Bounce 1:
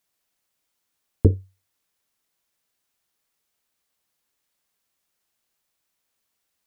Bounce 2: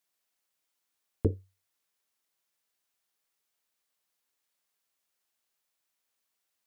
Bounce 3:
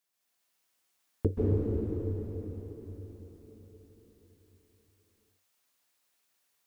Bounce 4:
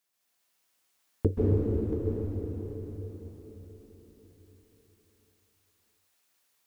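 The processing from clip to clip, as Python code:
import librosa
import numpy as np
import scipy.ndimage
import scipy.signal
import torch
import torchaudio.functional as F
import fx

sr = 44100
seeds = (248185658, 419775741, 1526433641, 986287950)

y1 = fx.low_shelf(x, sr, hz=240.0, db=-9.0)
y1 = y1 * librosa.db_to_amplitude(-4.5)
y2 = fx.rev_plate(y1, sr, seeds[0], rt60_s=4.8, hf_ratio=1.0, predelay_ms=120, drr_db=-7.5)
y2 = y2 * librosa.db_to_amplitude(-1.5)
y3 = y2 + 10.0 ** (-9.5 / 20.0) * np.pad(y2, (int(682 * sr / 1000.0), 0))[:len(y2)]
y3 = y3 * librosa.db_to_amplitude(2.5)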